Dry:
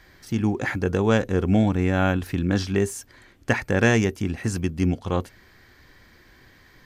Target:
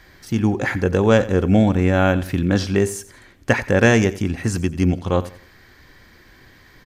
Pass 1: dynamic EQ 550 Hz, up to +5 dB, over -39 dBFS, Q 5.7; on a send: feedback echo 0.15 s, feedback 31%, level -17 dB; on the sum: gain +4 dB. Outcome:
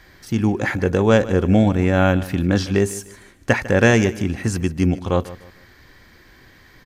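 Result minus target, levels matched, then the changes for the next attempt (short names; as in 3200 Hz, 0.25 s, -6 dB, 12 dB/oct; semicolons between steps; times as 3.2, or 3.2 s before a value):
echo 62 ms late
change: feedback echo 88 ms, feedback 31%, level -17 dB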